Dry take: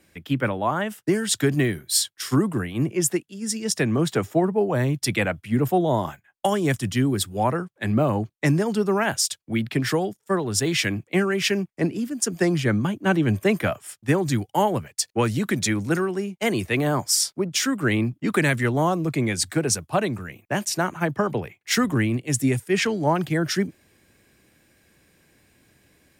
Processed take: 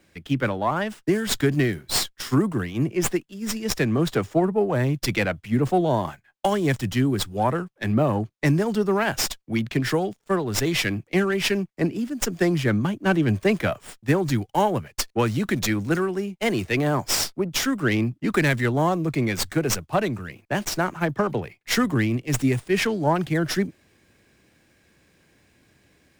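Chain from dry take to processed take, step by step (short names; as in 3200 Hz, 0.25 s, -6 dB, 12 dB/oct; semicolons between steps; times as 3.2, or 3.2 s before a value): running maximum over 3 samples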